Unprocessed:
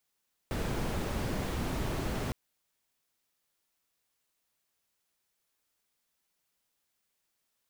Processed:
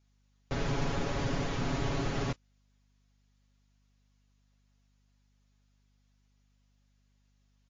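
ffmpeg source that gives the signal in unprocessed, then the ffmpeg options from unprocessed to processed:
-f lavfi -i "anoisesrc=c=brown:a=0.111:d=1.81:r=44100:seed=1"
-af "aecho=1:1:7.2:0.87,aeval=exprs='val(0)+0.000398*(sin(2*PI*50*n/s)+sin(2*PI*2*50*n/s)/2+sin(2*PI*3*50*n/s)/3+sin(2*PI*4*50*n/s)/4+sin(2*PI*5*50*n/s)/5)':c=same" -ar 16000 -c:a libmp3lame -b:a 40k

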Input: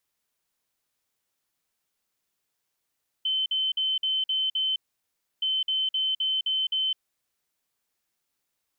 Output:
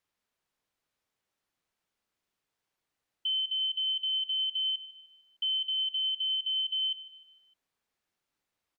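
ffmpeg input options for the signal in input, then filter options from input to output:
-f lavfi -i "aevalsrc='0.0708*sin(2*PI*3070*t)*clip(min(mod(mod(t,2.17),0.26),0.21-mod(mod(t,2.17),0.26))/0.005,0,1)*lt(mod(t,2.17),1.56)':d=4.34:s=44100"
-af "lowpass=f=2.9k:p=1,aecho=1:1:152|304|456|608:0.178|0.0782|0.0344|0.0151"

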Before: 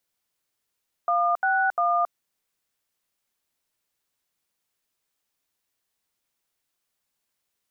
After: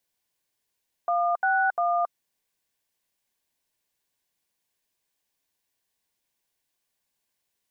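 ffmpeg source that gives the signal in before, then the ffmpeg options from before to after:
-f lavfi -i "aevalsrc='0.0794*clip(min(mod(t,0.349),0.273-mod(t,0.349))/0.002,0,1)*(eq(floor(t/0.349),0)*(sin(2*PI*697*mod(t,0.349))+sin(2*PI*1209*mod(t,0.349)))+eq(floor(t/0.349),1)*(sin(2*PI*770*mod(t,0.349))+sin(2*PI*1477*mod(t,0.349)))+eq(floor(t/0.349),2)*(sin(2*PI*697*mod(t,0.349))+sin(2*PI*1209*mod(t,0.349))))':d=1.047:s=44100"
-af "asuperstop=centerf=1300:order=4:qfactor=5.8"

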